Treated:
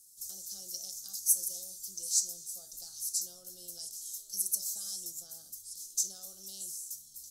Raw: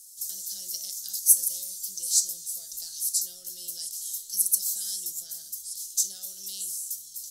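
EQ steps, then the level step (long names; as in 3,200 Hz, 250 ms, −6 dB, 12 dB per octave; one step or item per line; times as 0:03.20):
high shelf with overshoot 1,500 Hz −9.5 dB, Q 3
dynamic equaliser 6,100 Hz, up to +6 dB, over −51 dBFS, Q 1.6
0.0 dB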